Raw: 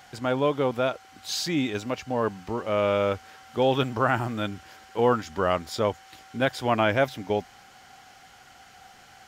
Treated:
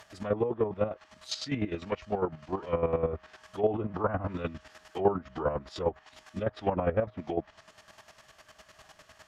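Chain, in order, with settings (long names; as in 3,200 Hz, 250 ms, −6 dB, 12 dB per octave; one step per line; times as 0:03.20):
phase-vocoder pitch shift with formants kept −3.5 semitones
treble cut that deepens with the level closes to 940 Hz, closed at −20.5 dBFS
square-wave tremolo 9.9 Hz, depth 65%, duty 30%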